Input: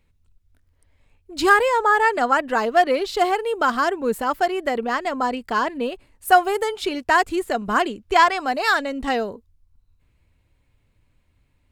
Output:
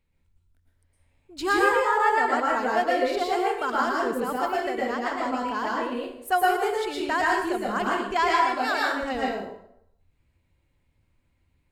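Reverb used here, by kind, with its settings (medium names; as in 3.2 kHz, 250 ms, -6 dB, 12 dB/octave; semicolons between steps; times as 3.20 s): plate-style reverb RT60 0.72 s, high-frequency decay 0.75×, pre-delay 100 ms, DRR -4 dB; trim -9.5 dB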